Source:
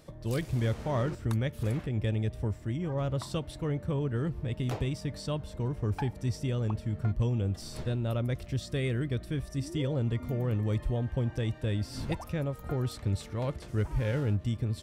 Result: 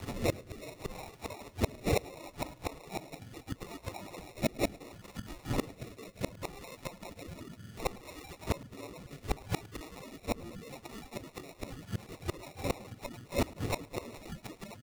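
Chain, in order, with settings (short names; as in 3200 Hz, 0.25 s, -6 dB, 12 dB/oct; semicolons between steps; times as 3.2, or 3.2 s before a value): spectrum mirrored in octaves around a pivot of 980 Hz; comb 2.6 ms, depth 45%; in parallel at +0.5 dB: vocal rider 0.5 s; on the sum: sample-and-hold 28×; rotary speaker horn 0.7 Hz, later 7 Hz, at 10.84; flipped gate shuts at -26 dBFS, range -26 dB; on a send: feedback echo 0.107 s, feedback 45%, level -23 dB; on the sum: mismatched tape noise reduction encoder only; gain +9.5 dB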